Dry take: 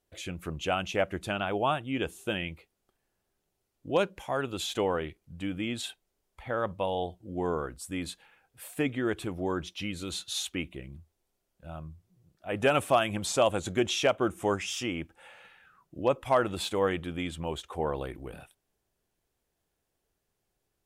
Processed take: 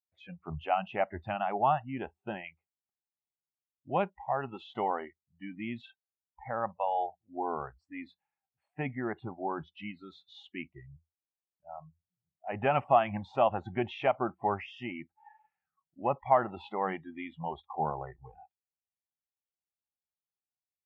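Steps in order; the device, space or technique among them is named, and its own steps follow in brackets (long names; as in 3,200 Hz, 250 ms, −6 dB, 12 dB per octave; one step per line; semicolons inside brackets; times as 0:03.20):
noise reduction from a noise print of the clip's start 28 dB
bass cabinet (loudspeaker in its box 70–2,300 Hz, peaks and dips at 81 Hz +5 dB, 170 Hz +5 dB, 300 Hz −9 dB, 480 Hz −10 dB, 800 Hz +9 dB, 1,500 Hz −6 dB)
0:01.86–0:02.44: dynamic equaliser 2,900 Hz, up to −6 dB, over −55 dBFS, Q 1.1
level −1 dB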